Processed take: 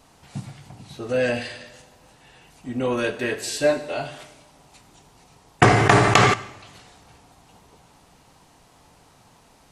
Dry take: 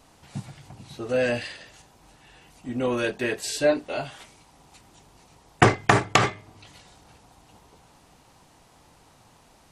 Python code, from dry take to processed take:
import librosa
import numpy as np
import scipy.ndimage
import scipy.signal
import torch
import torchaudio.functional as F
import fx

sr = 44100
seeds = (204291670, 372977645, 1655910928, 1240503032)

y = fx.rev_double_slope(x, sr, seeds[0], early_s=0.88, late_s=2.4, knee_db=-18, drr_db=8.0)
y = fx.env_flatten(y, sr, amount_pct=70, at=(5.64, 6.34))
y = F.gain(torch.from_numpy(y), 1.0).numpy()